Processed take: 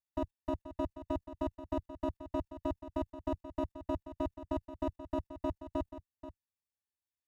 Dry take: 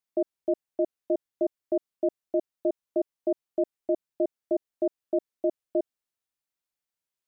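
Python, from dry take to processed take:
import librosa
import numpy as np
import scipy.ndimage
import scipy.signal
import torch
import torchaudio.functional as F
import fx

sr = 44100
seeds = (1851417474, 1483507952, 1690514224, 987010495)

y = fx.lower_of_two(x, sr, delay_ms=1.1)
y = scipy.signal.sosfilt(scipy.signal.butter(2, 46.0, 'highpass', fs=sr, output='sos'), y)
y = fx.peak_eq(y, sr, hz=91.0, db=15.0, octaves=1.5)
y = y + 0.92 * np.pad(y, (int(3.4 * sr / 1000.0), 0))[:len(y)]
y = fx.level_steps(y, sr, step_db=17)
y = y + 10.0 ** (-12.5 / 20.0) * np.pad(y, (int(482 * sr / 1000.0), 0))[:len(y)]
y = y * librosa.db_to_amplitude(1.5)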